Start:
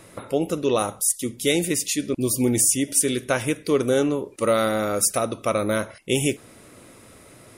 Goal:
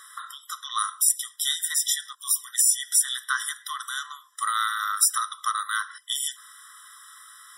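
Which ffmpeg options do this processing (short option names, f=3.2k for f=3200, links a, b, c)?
-af "acompressor=threshold=-22dB:ratio=2.5,afftfilt=real='re*eq(mod(floor(b*sr/1024/1000),2),1)':imag='im*eq(mod(floor(b*sr/1024/1000),2),1)':win_size=1024:overlap=0.75,volume=6.5dB"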